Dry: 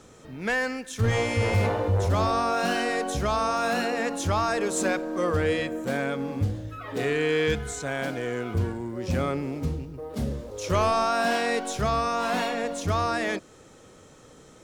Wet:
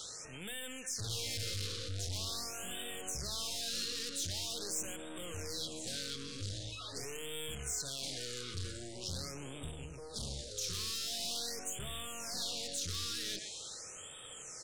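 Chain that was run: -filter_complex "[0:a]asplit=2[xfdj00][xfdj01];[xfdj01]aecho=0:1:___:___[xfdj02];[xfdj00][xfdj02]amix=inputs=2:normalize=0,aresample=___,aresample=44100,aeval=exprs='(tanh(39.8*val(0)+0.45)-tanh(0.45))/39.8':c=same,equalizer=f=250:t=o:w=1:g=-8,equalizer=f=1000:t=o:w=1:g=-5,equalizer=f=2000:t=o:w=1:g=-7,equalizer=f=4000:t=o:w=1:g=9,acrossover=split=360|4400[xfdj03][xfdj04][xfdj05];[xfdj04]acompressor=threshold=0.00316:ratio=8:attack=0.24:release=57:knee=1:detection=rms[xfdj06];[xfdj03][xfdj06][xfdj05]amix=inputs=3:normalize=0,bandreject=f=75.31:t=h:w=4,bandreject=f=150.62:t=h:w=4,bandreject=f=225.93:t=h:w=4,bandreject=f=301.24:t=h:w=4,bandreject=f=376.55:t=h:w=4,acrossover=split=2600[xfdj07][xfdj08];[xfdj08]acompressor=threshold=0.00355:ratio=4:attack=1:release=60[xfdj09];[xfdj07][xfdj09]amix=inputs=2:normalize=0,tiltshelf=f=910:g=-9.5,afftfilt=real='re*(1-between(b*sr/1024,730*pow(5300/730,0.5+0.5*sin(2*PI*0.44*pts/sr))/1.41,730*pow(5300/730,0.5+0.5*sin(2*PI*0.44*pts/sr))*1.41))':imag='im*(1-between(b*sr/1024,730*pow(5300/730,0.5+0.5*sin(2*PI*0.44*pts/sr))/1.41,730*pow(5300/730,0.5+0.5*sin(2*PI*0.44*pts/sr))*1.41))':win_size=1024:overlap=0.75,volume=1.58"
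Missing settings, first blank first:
123, 0.0708, 22050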